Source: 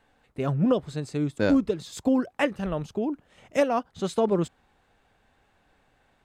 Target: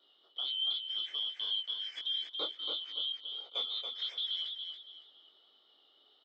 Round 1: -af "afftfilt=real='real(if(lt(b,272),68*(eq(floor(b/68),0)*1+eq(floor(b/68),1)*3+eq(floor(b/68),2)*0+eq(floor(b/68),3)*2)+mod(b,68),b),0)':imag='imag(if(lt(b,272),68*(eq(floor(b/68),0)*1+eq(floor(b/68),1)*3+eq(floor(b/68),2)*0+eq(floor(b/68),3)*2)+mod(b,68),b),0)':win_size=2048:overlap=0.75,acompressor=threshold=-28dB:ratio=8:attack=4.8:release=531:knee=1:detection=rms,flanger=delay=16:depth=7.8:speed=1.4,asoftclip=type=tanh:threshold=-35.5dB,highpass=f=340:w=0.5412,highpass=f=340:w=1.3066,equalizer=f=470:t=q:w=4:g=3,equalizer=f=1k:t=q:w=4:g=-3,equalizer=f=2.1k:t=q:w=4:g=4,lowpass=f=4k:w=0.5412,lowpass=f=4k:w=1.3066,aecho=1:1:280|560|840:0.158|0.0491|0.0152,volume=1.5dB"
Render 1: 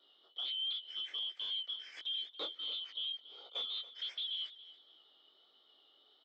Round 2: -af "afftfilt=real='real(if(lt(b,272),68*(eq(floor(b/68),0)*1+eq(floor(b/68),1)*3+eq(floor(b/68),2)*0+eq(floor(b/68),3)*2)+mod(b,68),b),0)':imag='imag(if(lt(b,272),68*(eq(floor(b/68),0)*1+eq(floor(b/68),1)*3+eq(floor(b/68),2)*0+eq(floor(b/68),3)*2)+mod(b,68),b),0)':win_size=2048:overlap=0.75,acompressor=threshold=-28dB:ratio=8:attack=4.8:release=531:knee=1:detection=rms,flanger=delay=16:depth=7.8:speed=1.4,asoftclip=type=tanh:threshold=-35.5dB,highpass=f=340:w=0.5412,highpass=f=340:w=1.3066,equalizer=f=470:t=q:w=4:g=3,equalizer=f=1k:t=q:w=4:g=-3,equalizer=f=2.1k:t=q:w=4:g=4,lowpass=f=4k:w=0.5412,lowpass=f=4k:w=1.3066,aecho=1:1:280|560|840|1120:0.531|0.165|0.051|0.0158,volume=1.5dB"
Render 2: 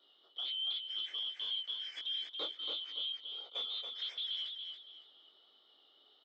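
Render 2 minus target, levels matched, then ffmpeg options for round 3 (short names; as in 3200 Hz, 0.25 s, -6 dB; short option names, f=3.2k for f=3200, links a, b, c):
soft clip: distortion +10 dB
-af "afftfilt=real='real(if(lt(b,272),68*(eq(floor(b/68),0)*1+eq(floor(b/68),1)*3+eq(floor(b/68),2)*0+eq(floor(b/68),3)*2)+mod(b,68),b),0)':imag='imag(if(lt(b,272),68*(eq(floor(b/68),0)*1+eq(floor(b/68),1)*3+eq(floor(b/68),2)*0+eq(floor(b/68),3)*2)+mod(b,68),b),0)':win_size=2048:overlap=0.75,acompressor=threshold=-28dB:ratio=8:attack=4.8:release=531:knee=1:detection=rms,flanger=delay=16:depth=7.8:speed=1.4,asoftclip=type=tanh:threshold=-27.5dB,highpass=f=340:w=0.5412,highpass=f=340:w=1.3066,equalizer=f=470:t=q:w=4:g=3,equalizer=f=1k:t=q:w=4:g=-3,equalizer=f=2.1k:t=q:w=4:g=4,lowpass=f=4k:w=0.5412,lowpass=f=4k:w=1.3066,aecho=1:1:280|560|840|1120:0.531|0.165|0.051|0.0158,volume=1.5dB"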